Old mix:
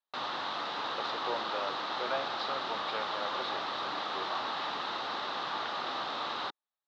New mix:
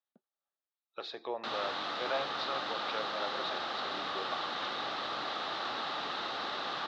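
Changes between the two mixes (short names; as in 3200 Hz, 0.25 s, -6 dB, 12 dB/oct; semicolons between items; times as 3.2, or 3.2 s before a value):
background: entry +1.30 s; master: add bell 970 Hz -7 dB 0.27 oct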